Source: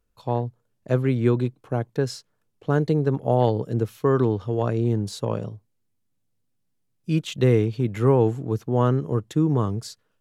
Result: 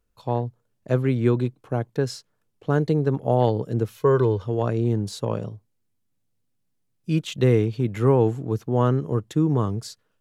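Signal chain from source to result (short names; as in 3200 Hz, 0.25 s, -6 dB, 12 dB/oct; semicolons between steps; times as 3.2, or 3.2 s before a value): 3.96–4.43 comb 2 ms, depth 56%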